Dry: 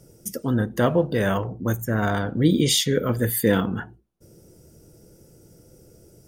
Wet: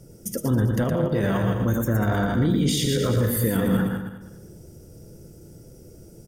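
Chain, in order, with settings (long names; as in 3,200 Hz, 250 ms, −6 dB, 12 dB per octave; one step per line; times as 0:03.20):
feedback delay that plays each chunk backwards 102 ms, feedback 50%, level −6.5 dB
0:00.84–0:01.24: output level in coarse steps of 12 dB
brickwall limiter −17 dBFS, peak gain reduction 11.5 dB
low-shelf EQ 310 Hz +6 dB
single-tap delay 116 ms −6 dB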